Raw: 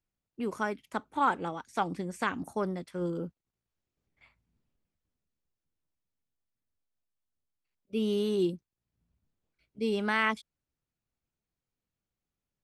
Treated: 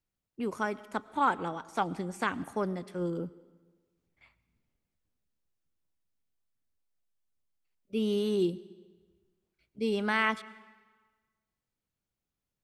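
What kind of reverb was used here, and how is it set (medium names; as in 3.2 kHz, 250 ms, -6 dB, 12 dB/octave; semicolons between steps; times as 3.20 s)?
algorithmic reverb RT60 1.4 s, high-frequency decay 0.9×, pre-delay 65 ms, DRR 19 dB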